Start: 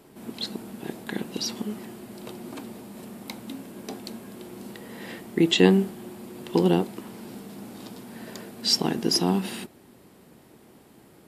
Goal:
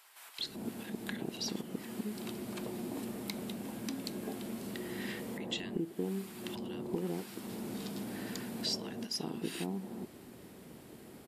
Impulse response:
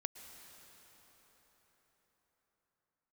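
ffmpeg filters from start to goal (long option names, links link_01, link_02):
-filter_complex "[0:a]acompressor=threshold=-36dB:ratio=5,acrossover=split=980[link_01][link_02];[link_01]adelay=390[link_03];[link_03][link_02]amix=inputs=2:normalize=0,volume=1dB"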